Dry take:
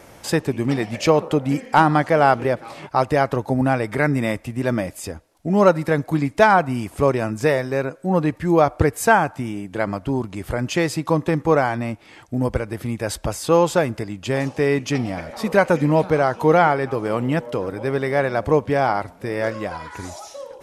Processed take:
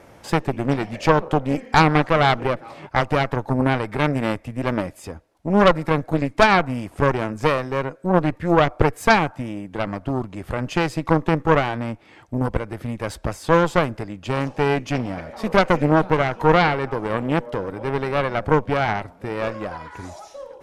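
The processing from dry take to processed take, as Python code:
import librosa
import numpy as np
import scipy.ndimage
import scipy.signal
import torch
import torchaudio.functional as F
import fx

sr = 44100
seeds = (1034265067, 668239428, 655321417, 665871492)

y = fx.high_shelf(x, sr, hz=3800.0, db=-9.5)
y = fx.cheby_harmonics(y, sr, harmonics=(4,), levels_db=(-8,), full_scale_db=-3.0)
y = y * 10.0 ** (-1.5 / 20.0)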